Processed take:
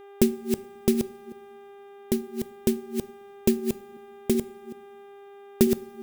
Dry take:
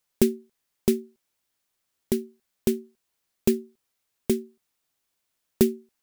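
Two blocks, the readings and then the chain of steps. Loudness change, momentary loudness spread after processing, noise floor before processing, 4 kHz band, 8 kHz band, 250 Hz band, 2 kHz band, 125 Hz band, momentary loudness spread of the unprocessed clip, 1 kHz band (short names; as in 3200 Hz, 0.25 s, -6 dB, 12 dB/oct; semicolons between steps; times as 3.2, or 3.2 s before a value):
0.0 dB, 23 LU, -79 dBFS, +1.0 dB, +1.0 dB, +1.5 dB, +2.0 dB, +1.0 dB, 9 LU, +6.0 dB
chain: reverse delay 0.189 s, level -6 dB; buzz 400 Hz, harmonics 9, -47 dBFS -9 dB/oct; two-slope reverb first 0.46 s, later 2.7 s, from -18 dB, DRR 16 dB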